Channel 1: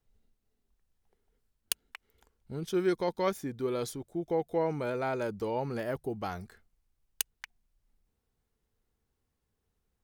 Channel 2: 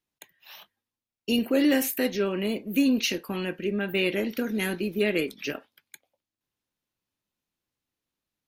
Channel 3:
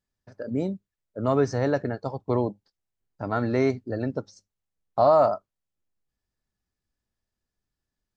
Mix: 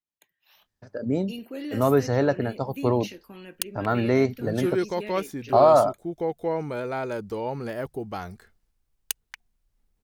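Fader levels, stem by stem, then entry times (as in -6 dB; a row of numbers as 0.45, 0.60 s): +2.5, -13.0, +2.0 dB; 1.90, 0.00, 0.55 s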